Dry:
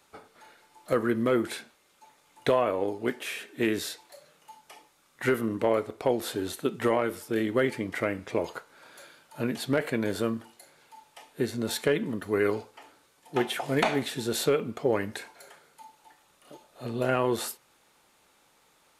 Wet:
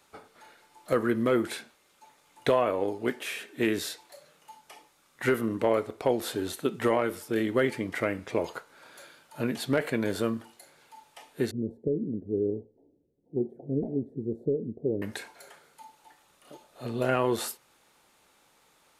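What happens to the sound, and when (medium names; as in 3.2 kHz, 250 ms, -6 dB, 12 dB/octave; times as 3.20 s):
11.51–15.02 s: inverse Chebyshev low-pass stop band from 1.1 kHz, stop band 50 dB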